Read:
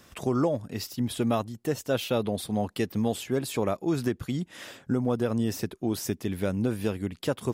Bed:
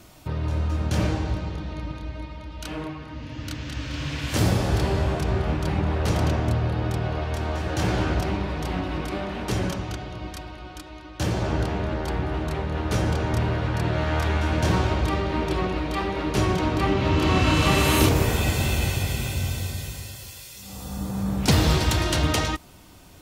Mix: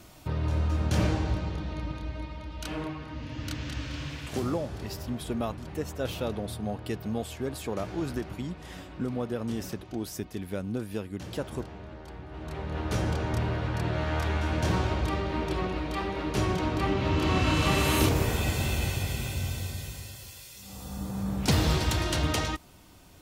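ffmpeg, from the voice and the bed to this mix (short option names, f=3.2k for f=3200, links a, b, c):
-filter_complex "[0:a]adelay=4100,volume=-5.5dB[a];[1:a]volume=9.5dB,afade=t=out:st=3.65:d=0.8:silence=0.188365,afade=t=in:st=12.29:d=0.5:silence=0.266073[b];[a][b]amix=inputs=2:normalize=0"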